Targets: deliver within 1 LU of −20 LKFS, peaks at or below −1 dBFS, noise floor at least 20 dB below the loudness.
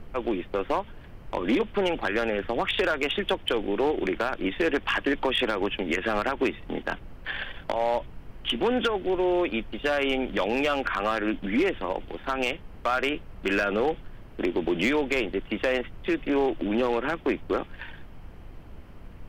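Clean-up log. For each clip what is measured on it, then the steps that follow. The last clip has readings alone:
share of clipped samples 0.8%; peaks flattened at −17.5 dBFS; background noise floor −45 dBFS; target noise floor −47 dBFS; integrated loudness −27.0 LKFS; sample peak −17.5 dBFS; target loudness −20.0 LKFS
→ clipped peaks rebuilt −17.5 dBFS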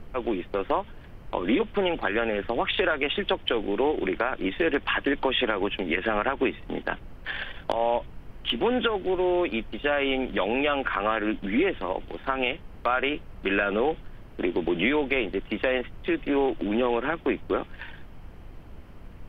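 share of clipped samples 0.0%; background noise floor −45 dBFS; target noise floor −47 dBFS
→ noise reduction from a noise print 6 dB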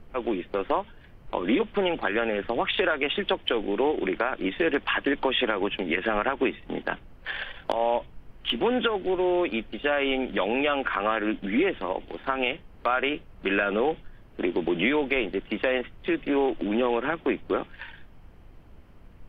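background noise floor −50 dBFS; integrated loudness −27.0 LKFS; sample peak −8.5 dBFS; target loudness −20.0 LKFS
→ level +7 dB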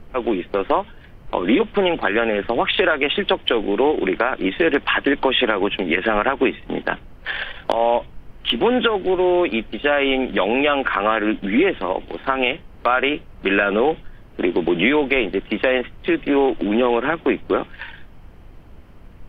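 integrated loudness −20.0 LKFS; sample peak −1.5 dBFS; background noise floor −43 dBFS

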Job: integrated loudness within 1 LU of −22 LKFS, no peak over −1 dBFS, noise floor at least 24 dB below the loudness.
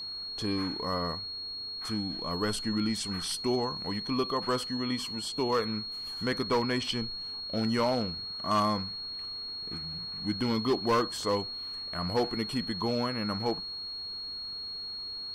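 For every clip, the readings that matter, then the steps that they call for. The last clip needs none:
share of clipped samples 0.4%; peaks flattened at −20.5 dBFS; interfering tone 4,300 Hz; level of the tone −36 dBFS; integrated loudness −31.5 LKFS; sample peak −20.5 dBFS; target loudness −22.0 LKFS
→ clipped peaks rebuilt −20.5 dBFS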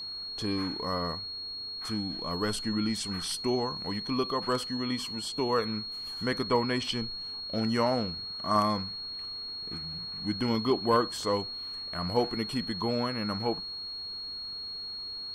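share of clipped samples 0.0%; interfering tone 4,300 Hz; level of the tone −36 dBFS
→ notch filter 4,300 Hz, Q 30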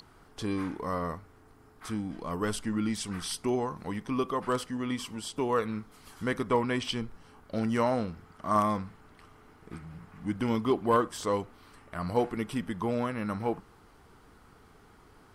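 interfering tone none found; integrated loudness −31.5 LKFS; sample peak −12.5 dBFS; target loudness −22.0 LKFS
→ level +9.5 dB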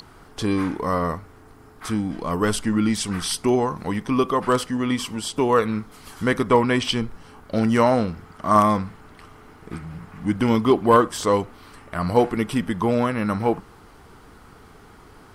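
integrated loudness −22.0 LKFS; sample peak −3.0 dBFS; background noise floor −48 dBFS

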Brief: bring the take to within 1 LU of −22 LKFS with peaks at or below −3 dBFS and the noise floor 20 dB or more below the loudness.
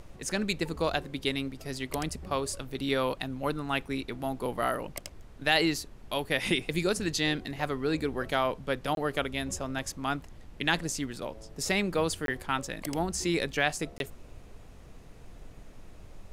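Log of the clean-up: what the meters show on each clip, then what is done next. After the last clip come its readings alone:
number of dropouts 3; longest dropout 22 ms; background noise floor −50 dBFS; target noise floor −51 dBFS; integrated loudness −31.0 LKFS; sample peak −8.5 dBFS; target loudness −22.0 LKFS
→ repair the gap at 0:08.95/0:12.26/0:13.98, 22 ms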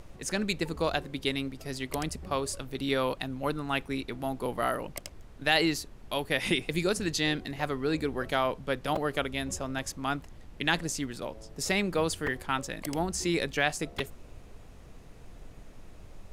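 number of dropouts 0; background noise floor −50 dBFS; target noise floor −51 dBFS
→ noise reduction from a noise print 6 dB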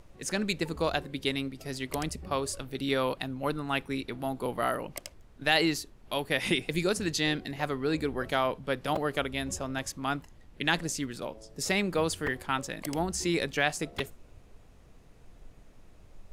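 background noise floor −55 dBFS; integrated loudness −31.0 LKFS; sample peak −8.5 dBFS; target loudness −22.0 LKFS
→ level +9 dB
brickwall limiter −3 dBFS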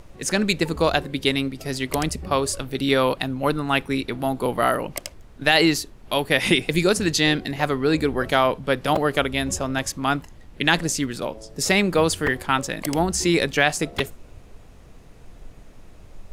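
integrated loudness −22.0 LKFS; sample peak −3.0 dBFS; background noise floor −46 dBFS

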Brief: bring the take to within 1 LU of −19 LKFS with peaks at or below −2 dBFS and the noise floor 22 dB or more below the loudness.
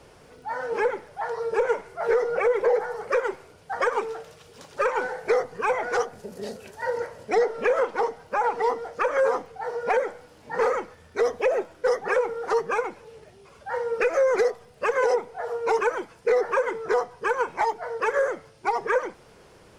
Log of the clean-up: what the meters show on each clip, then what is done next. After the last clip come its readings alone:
crackle rate 29 per second; integrated loudness −26.0 LKFS; sample peak −10.5 dBFS; target loudness −19.0 LKFS
→ click removal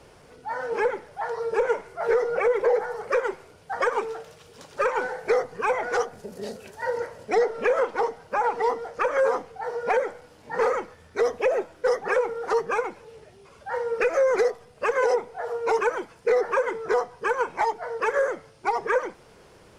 crackle rate 0 per second; integrated loudness −26.0 LKFS; sample peak −10.5 dBFS; target loudness −19.0 LKFS
→ level +7 dB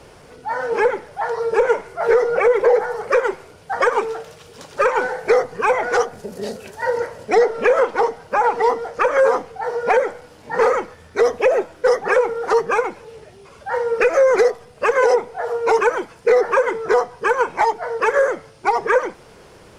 integrated loudness −19.0 LKFS; sample peak −3.5 dBFS; background noise floor −46 dBFS

